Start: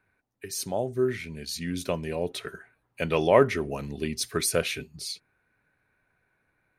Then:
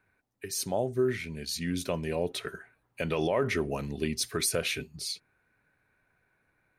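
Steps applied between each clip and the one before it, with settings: peak limiter -17.5 dBFS, peak gain reduction 11.5 dB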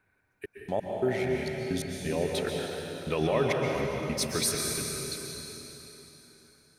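trance gate "xxxx..x.." 132 bpm -60 dB; plate-style reverb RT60 3.7 s, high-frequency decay 0.95×, pre-delay 110 ms, DRR -1 dB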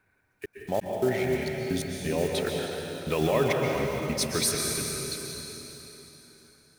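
block-companded coder 5-bit; trim +2 dB

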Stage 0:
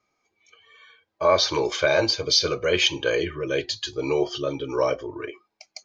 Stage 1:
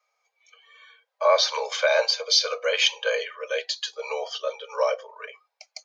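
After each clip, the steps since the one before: steep high-pass 470 Hz 96 dB/octave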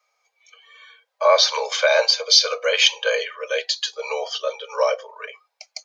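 peaking EQ 5.3 kHz +2.5 dB 1.9 oct; trim +3.5 dB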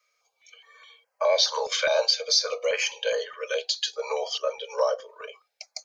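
in parallel at +2 dB: compression, threshold -25 dBFS, peak gain reduction 15 dB; on the sum: step-sequenced notch 4.8 Hz 830–3600 Hz; trim -7 dB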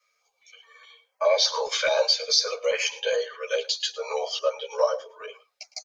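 delay 109 ms -19 dB; three-phase chorus; trim +3.5 dB

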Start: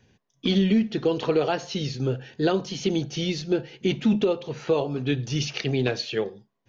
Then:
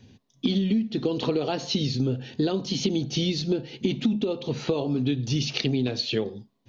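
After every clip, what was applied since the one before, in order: fifteen-band graphic EQ 100 Hz +8 dB, 250 Hz +10 dB, 1.6 kHz -5 dB, 4 kHz +7 dB; compression 6:1, threshold -25 dBFS, peak gain reduction 15.5 dB; trim +3 dB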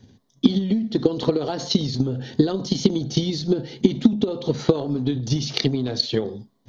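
transient shaper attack +11 dB, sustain +7 dB; peaking EQ 2.6 kHz -13 dB 0.31 oct; trim -1 dB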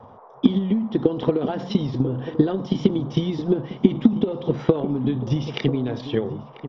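Savitzky-Golay filter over 25 samples; band noise 420–1100 Hz -47 dBFS; echo from a far wall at 170 m, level -12 dB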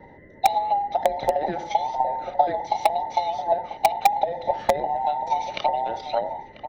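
every band turned upside down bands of 1 kHz; in parallel at -8 dB: integer overflow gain 4.5 dB; on the sum: trim -4.5 dB

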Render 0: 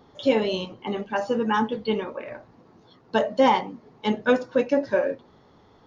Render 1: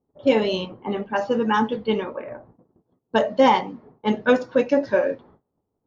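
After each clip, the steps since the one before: gate -51 dBFS, range -24 dB; level-controlled noise filter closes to 600 Hz, open at -18.5 dBFS; trim +2.5 dB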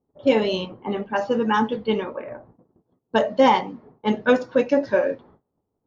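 no audible change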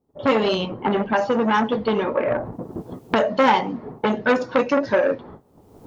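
recorder AGC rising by 38 dB/s; transformer saturation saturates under 1.4 kHz; trim +2.5 dB

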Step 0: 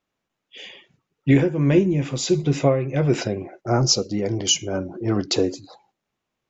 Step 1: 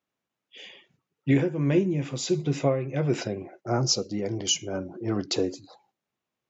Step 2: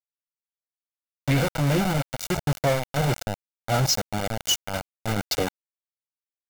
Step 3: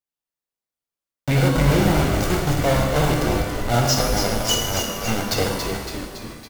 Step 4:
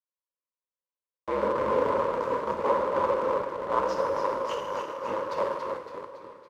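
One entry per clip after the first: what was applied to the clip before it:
high-pass 85 Hz; trim -5.5 dB
small samples zeroed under -25 dBFS; comb 1.4 ms, depth 60%; saturation -22 dBFS, distortion -11 dB; trim +5.5 dB
in parallel at -9.5 dB: decimation with a swept rate 17×, swing 60% 2.4 Hz; on the sum: frequency-shifting echo 280 ms, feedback 59%, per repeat -85 Hz, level -6 dB; pitch-shifted reverb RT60 1.2 s, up +12 st, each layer -8 dB, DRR 1.5 dB
cycle switcher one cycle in 2, inverted; in parallel at -11.5 dB: bit crusher 4-bit; on the sum: two resonant band-passes 730 Hz, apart 0.89 oct; trim +1 dB

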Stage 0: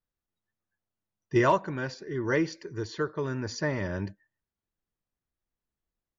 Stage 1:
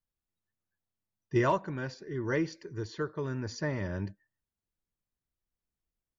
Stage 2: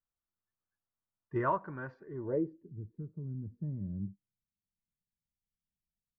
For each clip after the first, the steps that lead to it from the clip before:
bass shelf 210 Hz +5 dB; trim -5 dB
low-pass sweep 1.3 kHz -> 190 Hz, 2.03–2.73 s; trim -7 dB

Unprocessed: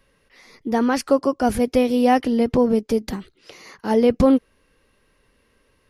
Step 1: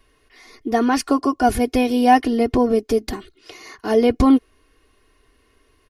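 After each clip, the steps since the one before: comb 2.8 ms, depth 75%; trim +1 dB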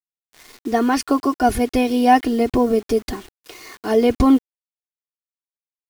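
bit crusher 7-bit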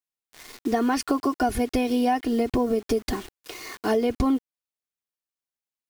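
compression, threshold -21 dBFS, peak gain reduction 13 dB; trim +1 dB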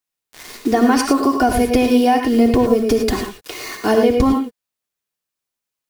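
gated-style reverb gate 130 ms rising, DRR 4 dB; trim +7.5 dB

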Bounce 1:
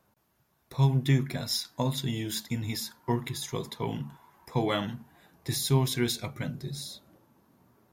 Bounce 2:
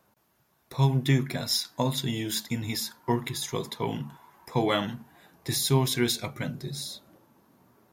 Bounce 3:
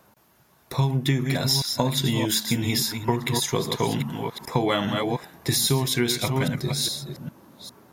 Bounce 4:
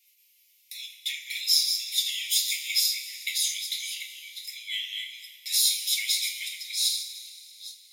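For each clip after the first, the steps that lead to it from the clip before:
bass shelf 120 Hz -7.5 dB; trim +3.5 dB
chunks repeated in reverse 405 ms, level -9 dB; compression 6:1, threshold -28 dBFS, peak gain reduction 11 dB; trim +9 dB
steep high-pass 2.1 kHz 96 dB/octave; two-slope reverb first 0.29 s, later 2.7 s, from -18 dB, DRR -3.5 dB; trim -3.5 dB

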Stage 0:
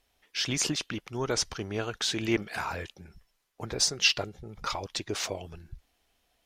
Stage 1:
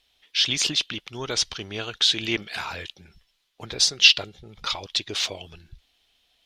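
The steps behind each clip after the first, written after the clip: peaking EQ 3.5 kHz +15 dB 1.2 oct; trim -2 dB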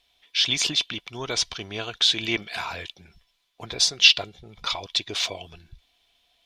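small resonant body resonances 700/1000/2300/3500 Hz, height 8 dB; trim -1 dB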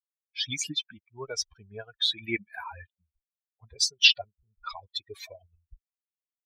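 expander on every frequency bin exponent 3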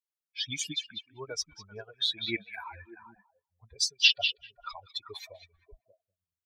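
repeats whose band climbs or falls 195 ms, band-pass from 3.1 kHz, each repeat -1.4 oct, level -7 dB; trim -3 dB

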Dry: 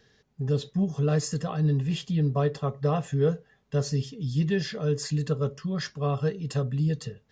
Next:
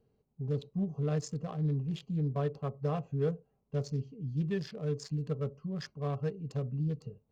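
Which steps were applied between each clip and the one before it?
local Wiener filter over 25 samples; trim -7 dB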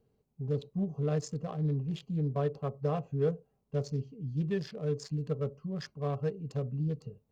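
dynamic bell 530 Hz, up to +3 dB, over -43 dBFS, Q 1.1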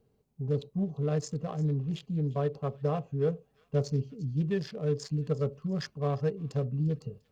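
feedback echo behind a high-pass 348 ms, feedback 34%, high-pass 2 kHz, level -18.5 dB; gain riding within 3 dB 0.5 s; trim +2.5 dB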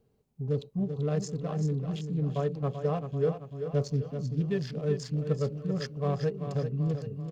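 feedback delay 387 ms, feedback 49%, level -8.5 dB

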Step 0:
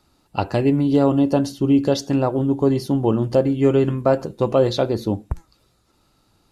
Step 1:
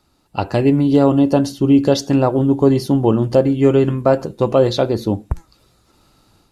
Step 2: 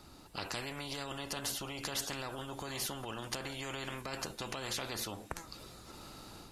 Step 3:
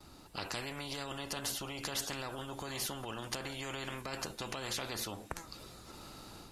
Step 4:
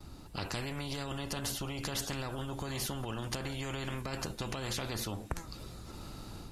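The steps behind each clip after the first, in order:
level rider gain up to 7 dB
peak limiter -13.5 dBFS, peak gain reduction 11.5 dB; spectrum-flattening compressor 4:1; trim -6 dB
gate with hold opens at -48 dBFS
bass shelf 220 Hz +11.5 dB

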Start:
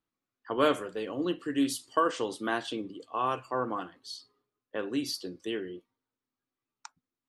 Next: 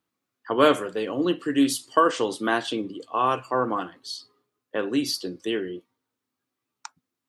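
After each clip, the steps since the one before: high-pass 86 Hz; trim +7 dB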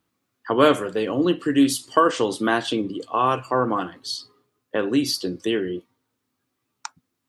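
bass shelf 140 Hz +8.5 dB; in parallel at -0.5 dB: compression, threshold -30 dBFS, peak gain reduction 17.5 dB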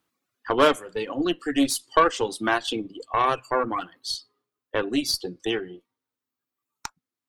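bass shelf 280 Hz -8.5 dB; Chebyshev shaper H 6 -21 dB, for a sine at -4 dBFS; reverb removal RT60 1.7 s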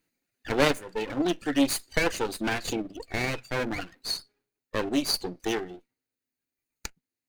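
comb filter that takes the minimum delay 0.46 ms

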